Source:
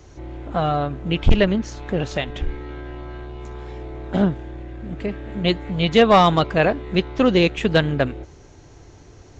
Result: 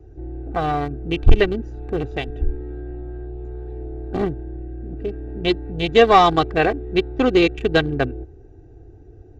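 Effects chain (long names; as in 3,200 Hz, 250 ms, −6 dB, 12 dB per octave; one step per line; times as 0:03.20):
adaptive Wiener filter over 41 samples
comb filter 2.6 ms, depth 66%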